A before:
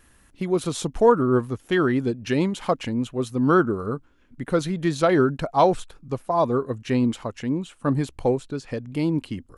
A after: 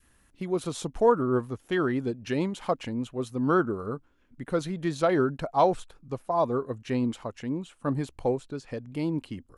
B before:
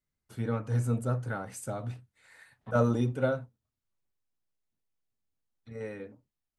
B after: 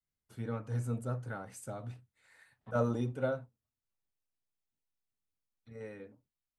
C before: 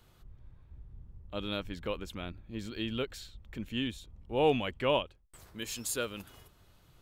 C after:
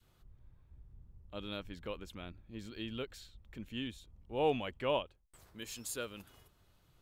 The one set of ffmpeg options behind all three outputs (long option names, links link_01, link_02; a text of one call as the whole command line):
ffmpeg -i in.wav -af "adynamicequalizer=threshold=0.0282:dfrequency=710:dqfactor=0.87:tfrequency=710:tqfactor=0.87:attack=5:release=100:ratio=0.375:range=1.5:mode=boostabove:tftype=bell,volume=-6.5dB" out.wav